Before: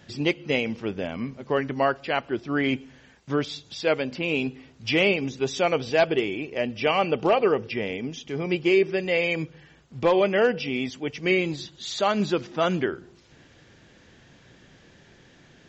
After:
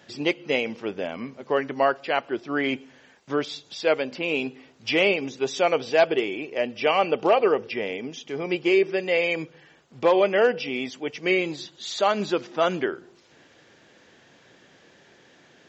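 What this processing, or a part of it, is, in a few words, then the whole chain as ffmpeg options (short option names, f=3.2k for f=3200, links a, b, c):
filter by subtraction: -filter_complex "[0:a]asplit=2[a][b];[b]lowpass=530,volume=-1[c];[a][c]amix=inputs=2:normalize=0"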